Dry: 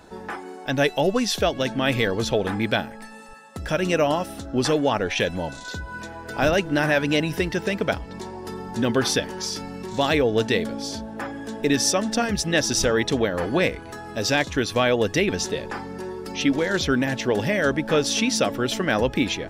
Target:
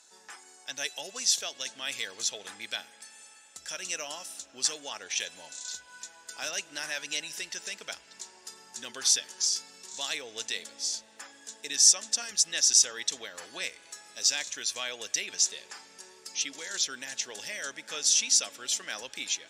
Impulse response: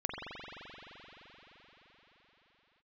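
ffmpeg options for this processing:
-filter_complex "[0:a]bandpass=f=7100:t=q:w=2.4:csg=0,asplit=2[s0][s1];[1:a]atrim=start_sample=2205[s2];[s1][s2]afir=irnorm=-1:irlink=0,volume=0.0668[s3];[s0][s3]amix=inputs=2:normalize=0,volume=2.24"

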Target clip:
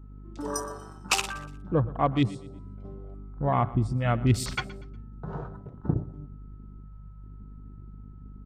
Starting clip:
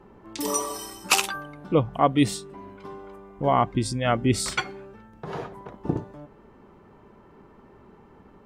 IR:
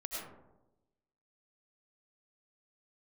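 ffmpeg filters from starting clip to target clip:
-filter_complex "[0:a]aeval=exprs='val(0)+0.00501*sin(2*PI*1300*n/s)':c=same,lowpass=f=10000:w=0.5412,lowpass=f=10000:w=1.3066,asplit=2[s0][s1];[1:a]atrim=start_sample=2205[s2];[s1][s2]afir=irnorm=-1:irlink=0,volume=0.0668[s3];[s0][s3]amix=inputs=2:normalize=0,asubboost=boost=3.5:cutoff=180,aeval=exprs='val(0)+0.01*(sin(2*PI*50*n/s)+sin(2*PI*2*50*n/s)/2+sin(2*PI*3*50*n/s)/3+sin(2*PI*4*50*n/s)/4+sin(2*PI*5*50*n/s)/5)':c=same,afwtdn=0.02,aecho=1:1:120|240|360:0.112|0.0393|0.0137,volume=0.596"

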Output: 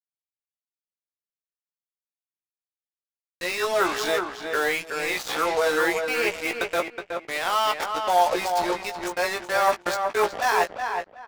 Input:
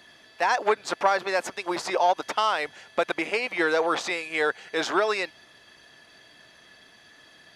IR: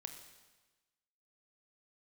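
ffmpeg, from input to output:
-filter_complex "[0:a]areverse,lowshelf=f=240:g=-6.5,atempo=0.67,acrusher=bits=4:mix=0:aa=0.5,asplit=2[s0][s1];[s1]adelay=17,volume=0.447[s2];[s0][s2]amix=inputs=2:normalize=0,asplit=2[s3][s4];[s4]adelay=370,lowpass=f=2500:p=1,volume=0.562,asplit=2[s5][s6];[s6]adelay=370,lowpass=f=2500:p=1,volume=0.23,asplit=2[s7][s8];[s8]adelay=370,lowpass=f=2500:p=1,volume=0.23[s9];[s3][s5][s7][s9]amix=inputs=4:normalize=0"

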